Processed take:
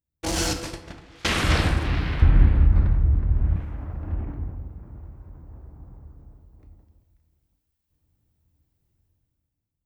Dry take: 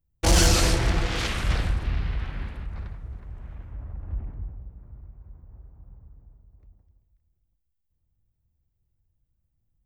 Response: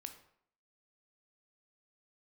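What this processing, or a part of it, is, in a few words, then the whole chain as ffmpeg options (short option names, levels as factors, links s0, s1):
far laptop microphone: -filter_complex "[0:a]asettb=1/sr,asplit=3[s0][s1][s2];[s0]atrim=end=0.534[s3];[s1]atrim=start=0.53:end=1.25,asetpts=PTS-STARTPTS,afade=t=in:d=0.004:c=qsin,afade=t=out:st=0.716:d=0.004:c=qsin,agate=range=0.0447:threshold=0.141:ratio=16:detection=peak[s4];[s2]atrim=start=1.246[s5];[s3][s4]acrossfade=d=0.004:c1=hsin:c2=qsin[s6];[s6][s5]acrossfade=d=0.004:c1=qsin:c2=hsin,asettb=1/sr,asplit=3[s7][s8][s9];[s7]atrim=end=2.224[s10];[s8]atrim=start=2.22:end=3.56,asetpts=PTS-STARTPTS,afade=t=in:d=0.004:c=qsin,afade=t=out:st=1.336:d=0.004:c=qsin,aemphasis=mode=reproduction:type=riaa[s11];[s9]atrim=start=3.556[s12];[s10][s11]acrossfade=d=0.004:c1=hsin:c2=qsin[s13];[s13][s12]acrossfade=d=0.004:c1=qsin:c2=hsin[s14];[1:a]atrim=start_sample=2205[s15];[s14][s15]afir=irnorm=-1:irlink=0,highpass=f=120:p=1,dynaudnorm=f=110:g=13:m=5.96,equalizer=f=310:t=o:w=0.28:g=5.5,volume=0.841"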